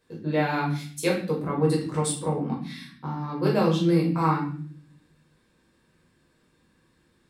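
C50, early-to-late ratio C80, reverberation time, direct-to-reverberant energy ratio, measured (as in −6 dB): 6.0 dB, 10.5 dB, 0.55 s, −4.0 dB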